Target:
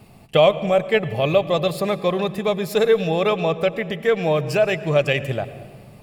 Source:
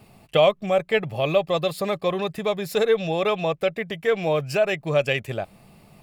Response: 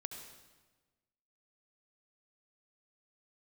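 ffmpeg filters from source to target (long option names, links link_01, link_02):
-filter_complex "[0:a]asplit=2[link_01][link_02];[link_02]lowshelf=frequency=470:gain=9[link_03];[1:a]atrim=start_sample=2205,asetrate=31752,aresample=44100[link_04];[link_03][link_04]afir=irnorm=-1:irlink=0,volume=-9dB[link_05];[link_01][link_05]amix=inputs=2:normalize=0"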